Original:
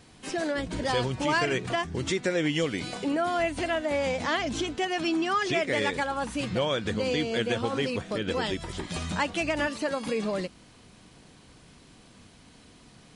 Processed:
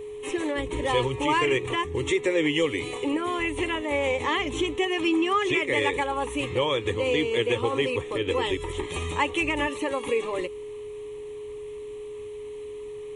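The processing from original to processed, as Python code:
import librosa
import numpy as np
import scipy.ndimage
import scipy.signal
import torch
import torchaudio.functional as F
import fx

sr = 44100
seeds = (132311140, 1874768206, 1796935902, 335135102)

y = fx.fixed_phaser(x, sr, hz=1000.0, stages=8)
y = y + 10.0 ** (-40.0 / 20.0) * np.sin(2.0 * np.pi * 420.0 * np.arange(len(y)) / sr)
y = y * librosa.db_to_amplitude(5.5)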